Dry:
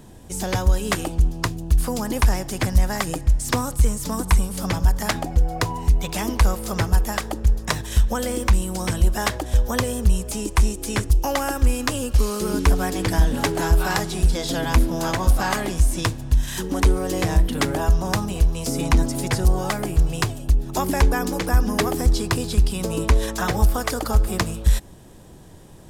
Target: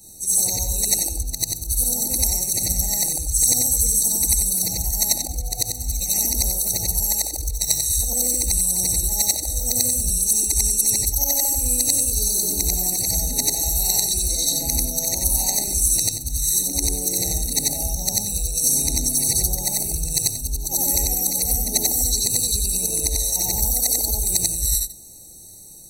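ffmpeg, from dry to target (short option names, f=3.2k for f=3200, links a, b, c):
-af "afftfilt=real='re':imag='-im':win_size=8192:overlap=0.75,aexciter=amount=9.8:drive=9.1:freq=3.8k,afftfilt=real='re*eq(mod(floor(b*sr/1024/930),2),0)':imag='im*eq(mod(floor(b*sr/1024/930),2),0)':win_size=1024:overlap=0.75,volume=-4.5dB"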